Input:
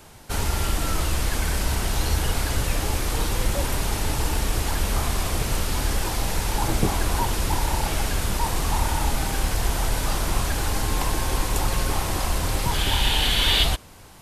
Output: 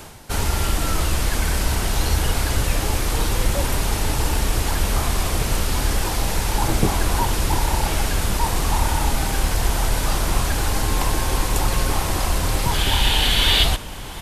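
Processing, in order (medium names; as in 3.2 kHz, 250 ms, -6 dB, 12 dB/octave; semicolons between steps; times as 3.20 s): reverse; upward compressor, threshold -29 dBFS; reverse; echo from a far wall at 120 m, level -17 dB; trim +3 dB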